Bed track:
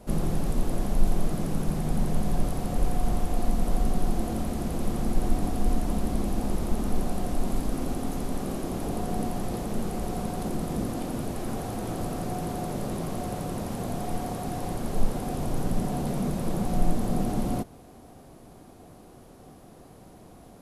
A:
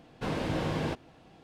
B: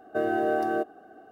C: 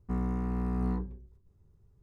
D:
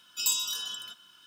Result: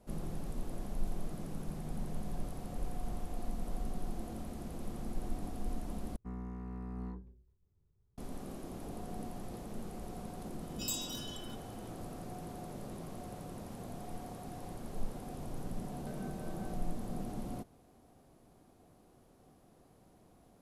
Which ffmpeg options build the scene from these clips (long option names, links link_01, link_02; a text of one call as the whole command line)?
ffmpeg -i bed.wav -i cue0.wav -i cue1.wav -i cue2.wav -i cue3.wav -filter_complex "[0:a]volume=-13.5dB[link_01];[2:a]acompressor=threshold=-32dB:ratio=6:attack=3.2:release=140:knee=1:detection=peak[link_02];[link_01]asplit=2[link_03][link_04];[link_03]atrim=end=6.164[link_05];[3:a]atrim=end=2.02,asetpts=PTS-STARTPTS,volume=-11.5dB[link_06];[link_04]atrim=start=8.176[link_07];[4:a]atrim=end=1.26,asetpts=PTS-STARTPTS,volume=-11dB,afade=type=in:duration=0.004:curve=hsin,afade=type=out:start_time=1.256:duration=0.004:curve=hsin,adelay=10620[link_08];[link_02]atrim=end=1.31,asetpts=PTS-STARTPTS,volume=-15dB,afade=type=in:duration=0.004:curve=hsin,afade=type=out:start_time=1.306:duration=0.004:curve=hsin,adelay=15920[link_09];[link_05][link_06]acrossfade=duration=0.004:curve1=hsin:curve2=hsin[link_10];[link_10][link_07]acrossfade=duration=0.004:curve1=hsin:curve2=hsin[link_11];[link_11][link_08][link_09]amix=inputs=3:normalize=0" out.wav